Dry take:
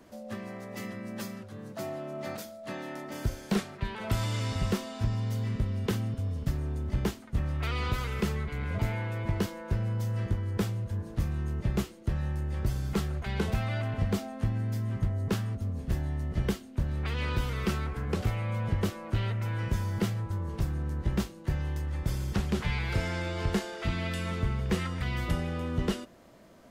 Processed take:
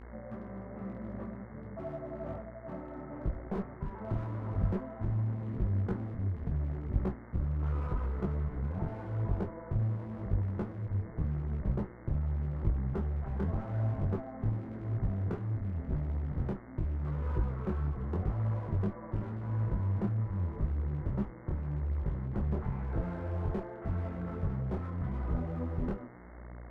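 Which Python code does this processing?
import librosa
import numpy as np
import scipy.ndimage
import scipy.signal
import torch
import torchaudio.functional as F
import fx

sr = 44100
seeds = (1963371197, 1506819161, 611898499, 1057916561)

y = scipy.signal.sosfilt(scipy.signal.butter(4, 1200.0, 'lowpass', fs=sr, output='sos'), x)
y = fx.dmg_buzz(y, sr, base_hz=60.0, harmonics=36, level_db=-48.0, tilt_db=-4, odd_only=False)
y = fx.low_shelf(y, sr, hz=110.0, db=6.0)
y = fx.clip_asym(y, sr, top_db=-31.5, bottom_db=-17.5)
y = fx.detune_double(y, sr, cents=30)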